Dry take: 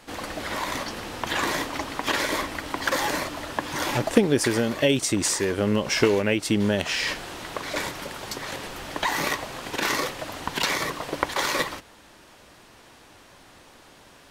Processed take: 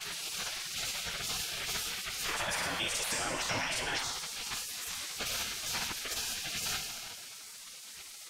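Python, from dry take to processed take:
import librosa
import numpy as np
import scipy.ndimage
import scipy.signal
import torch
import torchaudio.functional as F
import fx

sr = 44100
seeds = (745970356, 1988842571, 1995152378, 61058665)

y = fx.granulator(x, sr, seeds[0], grain_ms=100.0, per_s=20.0, spray_ms=100.0, spread_st=0)
y = fx.rev_schroeder(y, sr, rt60_s=2.3, comb_ms=27, drr_db=6.5)
y = fx.stretch_vocoder_free(y, sr, factor=0.58)
y = fx.spec_gate(y, sr, threshold_db=-15, keep='weak')
y = fx.env_flatten(y, sr, amount_pct=50)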